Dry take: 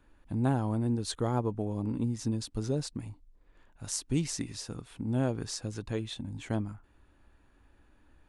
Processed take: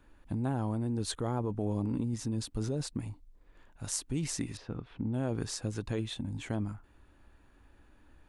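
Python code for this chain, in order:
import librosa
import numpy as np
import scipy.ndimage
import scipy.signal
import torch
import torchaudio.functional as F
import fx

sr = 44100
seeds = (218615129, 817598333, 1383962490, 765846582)

p1 = fx.dynamic_eq(x, sr, hz=5200.0, q=1.2, threshold_db=-51.0, ratio=4.0, max_db=-4)
p2 = fx.over_compress(p1, sr, threshold_db=-33.0, ratio=-0.5)
p3 = p1 + (p2 * librosa.db_to_amplitude(0.5))
p4 = fx.air_absorb(p3, sr, metres=290.0, at=(4.57, 5.14))
y = p4 * librosa.db_to_amplitude(-6.0)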